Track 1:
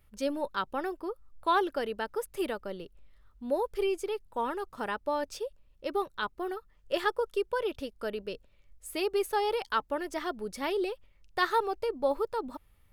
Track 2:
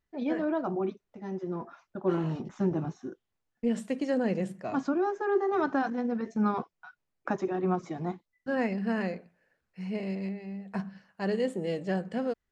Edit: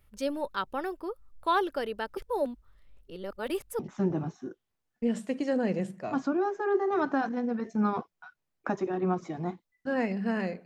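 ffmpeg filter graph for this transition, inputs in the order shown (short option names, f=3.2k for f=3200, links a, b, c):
-filter_complex "[0:a]apad=whole_dur=10.65,atrim=end=10.65,asplit=2[a][b];[a]atrim=end=2.172[c];[b]atrim=start=2.168:end=3.792,asetpts=PTS-STARTPTS,areverse[d];[1:a]atrim=start=2.398:end=9.26[e];[c][d]acrossfade=d=0.004:c1=hsin:c2=hsin[f];[f][e]acrossfade=d=0.004:c1=hsin:c2=hsin"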